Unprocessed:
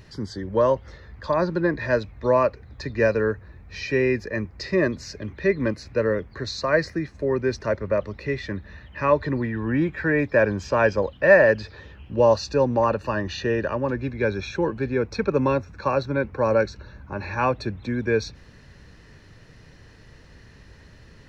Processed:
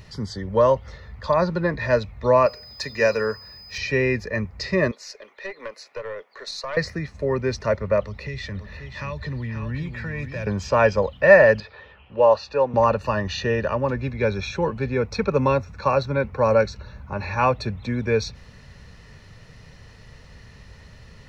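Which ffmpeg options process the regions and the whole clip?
-filter_complex "[0:a]asettb=1/sr,asplit=3[s0][s1][s2];[s0]atrim=end=2.464[s3];[s1]atrim=start=2.46:end=3.78,asetpts=PTS-STARTPTS,afade=t=in:d=0.004:c=qsin,afade=t=out:st=1.316:d=0.004:c=qsin,aemphasis=mode=production:type=bsi,bandreject=f=121.7:t=h:w=4,bandreject=f=243.4:t=h:w=4,bandreject=f=365.1:t=h:w=4,bandreject=f=486.8:t=h:w=4,bandreject=f=608.5:t=h:w=4,bandreject=f=730.2:t=h:w=4,bandreject=f=851.9:t=h:w=4,bandreject=f=973.6:t=h:w=4,bandreject=f=1095.3:t=h:w=4,bandreject=f=1217:t=h:w=4,bandreject=f=1338.7:t=h:w=4,bandreject=f=1460.4:t=h:w=4,aeval=exprs='val(0)+0.00562*sin(2*PI*5000*n/s)':c=same[s4];[s2]atrim=start=3.776[s5];[s3][s4]acrossfade=d=0.004:c1=hsin:c2=qsin[s6];[s6][s5]acrossfade=d=0.004:c1=qsin:c2=hsin,asettb=1/sr,asplit=3[s7][s8][s9];[s7]atrim=end=4.914[s10];[s8]atrim=start=4.91:end=6.77,asetpts=PTS-STARTPTS,afade=t=in:d=0.004:c=qsin,afade=t=out:st=1.856:d=0.004:c=qsin,highpass=f=430:w=0.5412,highpass=f=430:w=1.3066,aeval=exprs='(tanh(4.47*val(0)+0.7)-tanh(0.7))/4.47':c=same,acompressor=threshold=0.0282:ratio=3:attack=3.2:release=140:knee=1:detection=peak[s11];[s9]atrim=start=6.766[s12];[s10][s11]acrossfade=d=0.004:c1=hsin:c2=qsin[s13];[s13][s12]acrossfade=d=0.004:c1=qsin:c2=hsin,asettb=1/sr,asplit=3[s14][s15][s16];[s14]atrim=end=8.014[s17];[s15]atrim=start=8.01:end=10.47,asetpts=PTS-STARTPTS,afade=t=in:d=0.004:c=qsin,afade=t=out:st=2.456:d=0.004:c=qsin,acrossover=split=140|3000[s18][s19][s20];[s19]acompressor=threshold=0.0178:ratio=6:attack=3.2:release=140:knee=2.83:detection=peak[s21];[s18][s21][s20]amix=inputs=3:normalize=0,aecho=1:1:535:0.398,atrim=end_sample=108486[s22];[s16]atrim=start=10.466[s23];[s17][s22]acrossfade=d=0.004:c1=hsin:c2=qsin[s24];[s24][s23]acrossfade=d=0.004:c1=qsin:c2=hsin,asettb=1/sr,asplit=3[s25][s26][s27];[s25]atrim=end=11.604[s28];[s26]atrim=start=11.6:end=12.74,asetpts=PTS-STARTPTS,afade=t=in:d=0.004:c=qsin,afade=t=out:st=1.136:d=0.004:c=qsin,acrossover=split=360 3600:gain=0.2 1 0.0891[s29][s30][s31];[s29][s30][s31]amix=inputs=3:normalize=0,bandreject=f=2000:w=18[s32];[s27]atrim=start=12.736[s33];[s28][s32]acrossfade=d=0.004:c1=hsin:c2=qsin[s34];[s34][s33]acrossfade=d=0.004:c1=qsin:c2=hsin,equalizer=f=320:t=o:w=0.48:g=-11.5,bandreject=f=1600:w=8.9,volume=1.5"

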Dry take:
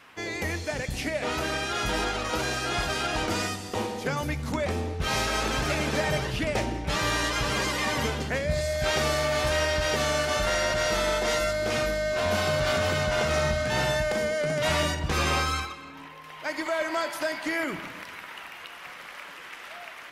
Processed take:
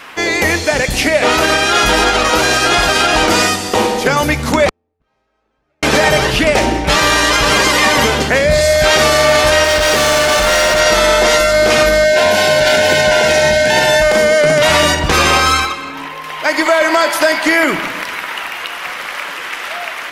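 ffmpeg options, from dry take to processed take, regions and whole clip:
-filter_complex "[0:a]asettb=1/sr,asplit=3[s0][s1][s2];[s0]atrim=end=4.694[s3];[s1]atrim=start=4.69:end=5.83,asetpts=PTS-STARTPTS,afade=t=in:d=0.004:c=qsin,afade=t=out:st=1.136:d=0.004:c=qsin,lowpass=f=1000:p=1,agate=range=0.00224:threshold=0.0891:ratio=16:release=100:detection=peak[s4];[s2]atrim=start=5.826[s5];[s3][s4]acrossfade=d=0.004:c1=hsin:c2=qsin[s6];[s6][s5]acrossfade=d=0.004:c1=qsin:c2=hsin,asettb=1/sr,asplit=3[s7][s8][s9];[s7]atrim=end=9.644[s10];[s8]atrim=start=9.64:end=10.8,asetpts=PTS-STARTPTS,afade=t=in:d=0.004:c=qsin,afade=t=out:st=1.156:d=0.004:c=qsin,volume=23.7,asoftclip=hard,volume=0.0422,acrusher=bits=8:mix=0:aa=0.5[s11];[s9]atrim=start=10.796[s12];[s10][s11]acrossfade=d=0.004:c1=hsin:c2=qsin[s13];[s13][s12]acrossfade=d=0.004:c1=qsin:c2=hsin,asettb=1/sr,asplit=3[s14][s15][s16];[s14]atrim=end=12.044[s17];[s15]atrim=start=12.04:end=14.02,asetpts=PTS-STARTPTS,afade=t=in:d=0.004:c=qsin,afade=t=out:st=1.976:d=0.004:c=qsin,asuperstop=centerf=1200:order=12:qfactor=4,lowshelf=f=100:g=-10.5[s18];[s16]atrim=start=14.016[s19];[s17][s18]acrossfade=d=0.004:c1=hsin:c2=qsin[s20];[s20][s19]acrossfade=d=0.004:c1=qsin:c2=hsin,equalizer=f=99:t=o:w=2.1:g=-9,alimiter=level_in=9.44:limit=0.891:release=50:level=0:latency=1,volume=0.891"

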